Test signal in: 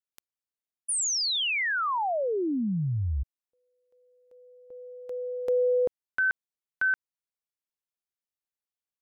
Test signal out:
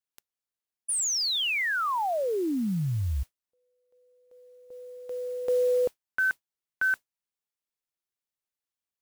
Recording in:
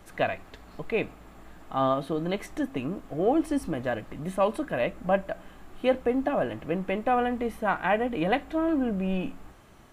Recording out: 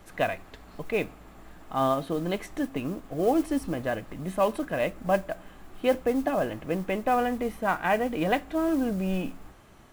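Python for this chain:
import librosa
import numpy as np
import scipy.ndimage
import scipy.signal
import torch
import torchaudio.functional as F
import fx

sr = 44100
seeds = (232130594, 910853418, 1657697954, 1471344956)

y = fx.mod_noise(x, sr, seeds[0], snr_db=25)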